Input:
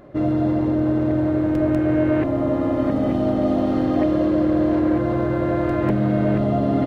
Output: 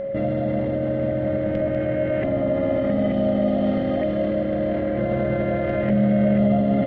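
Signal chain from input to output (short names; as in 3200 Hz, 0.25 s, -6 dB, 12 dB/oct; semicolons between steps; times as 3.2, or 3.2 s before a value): air absorption 170 m; limiter -20.5 dBFS, peak gain reduction 11 dB; thirty-one-band EQ 200 Hz +11 dB, 315 Hz -7 dB, 630 Hz +6 dB, 1000 Hz -10 dB, 2000 Hz +10 dB, 3150 Hz +9 dB; whine 550 Hz -29 dBFS; gain +3.5 dB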